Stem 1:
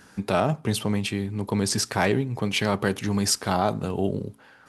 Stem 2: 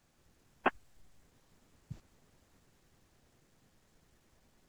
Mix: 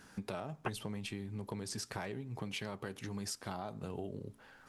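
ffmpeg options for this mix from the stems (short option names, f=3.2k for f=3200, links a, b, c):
-filter_complex "[0:a]acompressor=threshold=-31dB:ratio=10,flanger=delay=0.8:depth=2.1:regen=-84:speed=0.85:shape=triangular,volume=-2dB,asplit=2[a][b];[1:a]volume=-2dB[c];[b]apad=whole_len=206529[d];[c][d]sidechaincompress=threshold=-44dB:ratio=8:attack=7.8:release=595[e];[a][e]amix=inputs=2:normalize=0"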